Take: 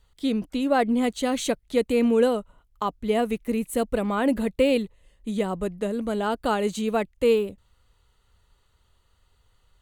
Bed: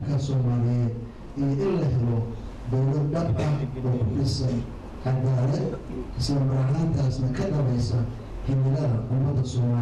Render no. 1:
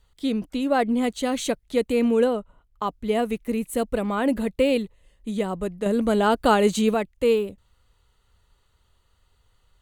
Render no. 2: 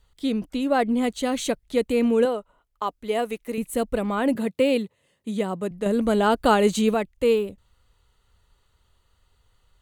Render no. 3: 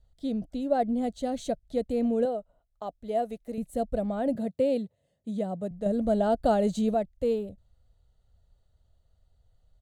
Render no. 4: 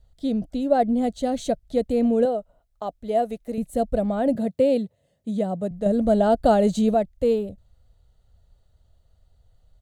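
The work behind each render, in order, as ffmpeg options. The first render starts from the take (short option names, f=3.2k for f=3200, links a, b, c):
-filter_complex "[0:a]asettb=1/sr,asplit=3[a][b][c];[a]atrim=end=2.244[d];[b]atrim=start=2.24:end=2.83,asetpts=PTS-STARTPTS,afade=t=in:d=0.004:c=qsin,afade=t=out:st=0.586:d=0.004:c=qsin,highshelf=f=3.5k:g=-8[e];[c]atrim=start=2.826[f];[d][e]acrossfade=d=0.004:c1=hsin:c2=qsin[g];[g][f]acrossfade=d=0.004:c1=qsin:c2=hsin,asplit=3[h][i][j];[h]atrim=end=5.862[k];[i]atrim=start=5.858:end=6.942,asetpts=PTS-STARTPTS,volume=6dB[l];[j]atrim=start=6.938[m];[k][l]acrossfade=d=0.004:c1=hsin:c2=hsin[n];[n][m]acrossfade=d=0.004:c1=hsin:c2=hsin"
-filter_complex "[0:a]asettb=1/sr,asplit=3[a][b][c];[a]atrim=end=2.254[d];[b]atrim=start=2.25:end=3.58,asetpts=PTS-STARTPTS,afade=t=in:d=0.004:c=qsin,afade=t=out:st=1.326:d=0.004:c=qsin,bass=f=250:g=-12,treble=f=4k:g=1[e];[c]atrim=start=3.576[f];[d][e]acrossfade=d=0.004:c1=hsin:c2=qsin[g];[g][f]acrossfade=d=0.004:c1=qsin:c2=hsin,asettb=1/sr,asplit=3[h][i][j];[h]atrim=end=4.354[k];[i]atrim=start=4.35:end=5.71,asetpts=PTS-STARTPTS,afade=t=in:d=0.004:c=qsin,afade=t=out:st=1.356:d=0.004:c=qsin,highpass=f=110:w=0.5412,highpass=f=110:w=1.3066[l];[j]atrim=start=5.706[m];[k][l]acrossfade=d=0.004:c1=hsin:c2=qsin[n];[n][m]acrossfade=d=0.004:c1=qsin:c2=hsin"
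-af "firequalizer=gain_entry='entry(110,0);entry(380,-11);entry(660,2);entry(990,-19);entry(1600,-14);entry(2400,-20);entry(3900,-11);entry(7700,-13);entry(12000,-17)':delay=0.05:min_phase=1"
-af "volume=6dB"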